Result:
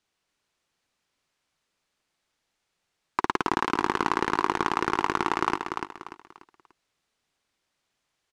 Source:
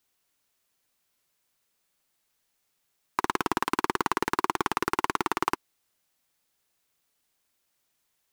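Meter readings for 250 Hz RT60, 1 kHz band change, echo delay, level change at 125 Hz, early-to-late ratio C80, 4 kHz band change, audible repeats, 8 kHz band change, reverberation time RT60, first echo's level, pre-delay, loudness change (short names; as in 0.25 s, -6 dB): none, +2.0 dB, 0.293 s, +2.5 dB, none, +0.5 dB, 4, -4.0 dB, none, -6.0 dB, none, +1.5 dB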